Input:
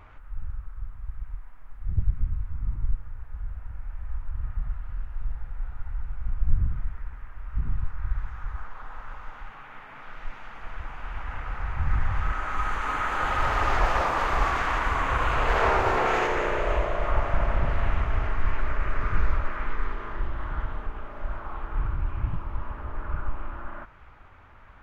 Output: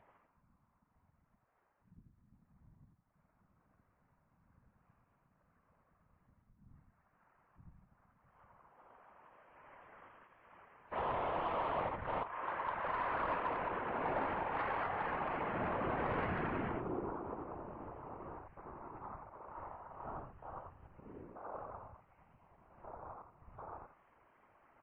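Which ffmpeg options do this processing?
-filter_complex "[0:a]alimiter=limit=0.106:level=0:latency=1:release=345,afwtdn=0.0178,acompressor=threshold=0.01:ratio=2.5,asplit=2[s0][s1];[s1]aecho=0:1:88:0.668[s2];[s0][s2]amix=inputs=2:normalize=0,asettb=1/sr,asplit=3[s3][s4][s5];[s3]atrim=end=10.924[s6];[s4]atrim=start=10.92:end=12.23,asetpts=PTS-STARTPTS,afade=t=in:d=0.004:c=qsin,afade=t=out:st=1.306:d=0.004:c=qsin,asplit=2[s7][s8];[s8]highpass=f=720:p=1,volume=70.8,asoftclip=type=tanh:threshold=0.0447[s9];[s7][s9]amix=inputs=2:normalize=0,lowpass=f=1100:p=1,volume=0.501[s10];[s5]atrim=start=12.226[s11];[s6][s10]acrossfade=d=0.004:c1=hsin:c2=qsin[s12];[s12][s11]acrossfade=d=0.004:c1=qsin:c2=hsin,highpass=f=210:t=q:w=0.5412,highpass=f=210:t=q:w=1.307,lowpass=f=3200:t=q:w=0.5176,lowpass=f=3200:t=q:w=0.7071,lowpass=f=3200:t=q:w=1.932,afreqshift=-270,asettb=1/sr,asplit=3[s13][s14][s15];[s13]atrim=end=21.944[s16];[s14]atrim=start=21.94:end=22.52,asetpts=PTS-STARTPTS,afade=t=in:d=0.004:c=qsin,afade=t=out:st=0.576:d=0.004:c=qsin,aemphasis=mode=production:type=bsi[s17];[s15]atrim=start=22.516[s18];[s16][s17]acrossfade=d=0.004:c1=hsin:c2=qsin[s19];[s19][s18]acrossfade=d=0.004:c1=qsin:c2=hsin,afftfilt=real='hypot(re,im)*cos(2*PI*random(0))':imag='hypot(re,im)*sin(2*PI*random(1))':win_size=512:overlap=0.75,asoftclip=type=tanh:threshold=0.0211,volume=2.66" -ar 11025 -c:a libmp3lame -b:a 24k

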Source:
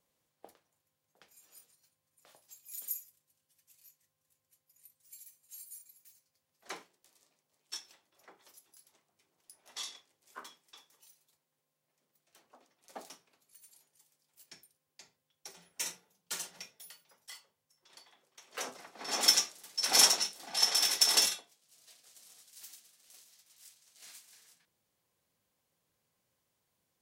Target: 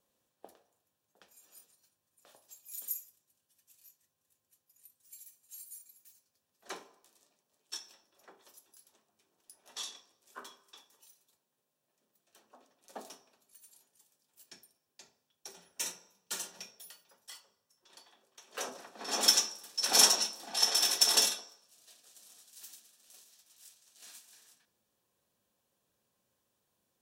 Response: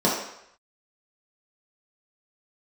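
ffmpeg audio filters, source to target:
-filter_complex "[0:a]bandreject=f=2100:w=6.7,asplit=2[s0][s1];[1:a]atrim=start_sample=2205,highshelf=f=9900:g=5[s2];[s1][s2]afir=irnorm=-1:irlink=0,volume=0.0422[s3];[s0][s3]amix=inputs=2:normalize=0"

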